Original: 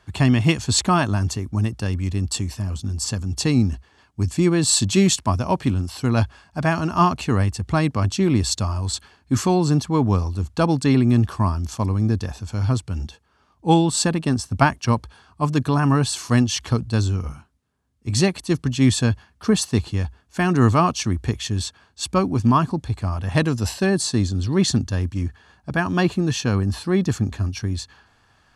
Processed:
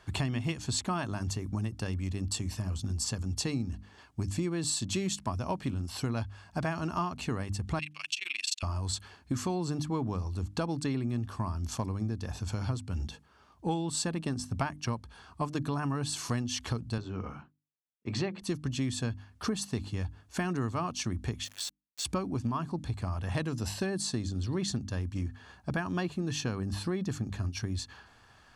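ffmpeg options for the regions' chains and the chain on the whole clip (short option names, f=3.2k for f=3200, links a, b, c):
-filter_complex "[0:a]asettb=1/sr,asplit=3[a][b][c];[a]atrim=end=7.794[d];[b]atrim=start=7.79:end=8.63,asetpts=PTS-STARTPTS,afade=t=in:d=0.004:c=qsin,afade=t=out:st=0.836:d=0.004:c=qsin,highpass=f=2.6k:t=q:w=6.1,tremolo=f=23:d=0.974[e];[c]atrim=start=8.626[f];[d][e]acrossfade=d=0.004:c1=hsin:c2=qsin[g];[g][f]acrossfade=d=0.004:c1=qsin:c2=hsin,asettb=1/sr,asplit=3[h][i][j];[h]atrim=end=16.984[k];[i]atrim=start=16.98:end=18.42,asetpts=PTS-STARTPTS,afade=t=in:d=0.004:c=qsin,afade=t=out:st=1.436:d=0.004:c=qsin,bandreject=f=60:t=h:w=6,bandreject=f=120:t=h:w=6,bandreject=f=180:t=h:w=6,bandreject=f=240:t=h:w=6,bandreject=f=300:t=h:w=6,bandreject=f=360:t=h:w=6,bandreject=f=420:t=h:w=6,bandreject=f=480:t=h:w=6,bandreject=f=540:t=h:w=6,agate=range=-33dB:threshold=-53dB:ratio=3:release=100:detection=peak,highpass=170,lowpass=2.7k[l];[j]atrim=start=18.416[m];[k][l]acrossfade=d=0.004:c1=hsin:c2=qsin[n];[n][m]acrossfade=d=0.004:c1=qsin:c2=hsin,asettb=1/sr,asplit=3[o][p][q];[o]atrim=end=21.444[r];[p]atrim=start=21.44:end=22.05,asetpts=PTS-STARTPTS,afade=t=in:d=0.004:c=qsin,afade=t=out:st=0.606:d=0.004:c=qsin,highpass=f=1.4k:w=0.5412,highpass=f=1.4k:w=1.3066,acompressor=threshold=-31dB:ratio=6:attack=3.2:release=140:knee=1:detection=peak,aeval=exprs='val(0)*gte(abs(val(0)),0.00944)':c=same[s];[q]atrim=start=22.046[t];[r][s]acrossfade=d=0.004:c1=hsin:c2=qsin[u];[u][t]acrossfade=d=0.004:c1=qsin:c2=hsin,bandreject=f=50:t=h:w=6,bandreject=f=100:t=h:w=6,bandreject=f=150:t=h:w=6,bandreject=f=200:t=h:w=6,bandreject=f=250:t=h:w=6,bandreject=f=300:t=h:w=6,acompressor=threshold=-30dB:ratio=6"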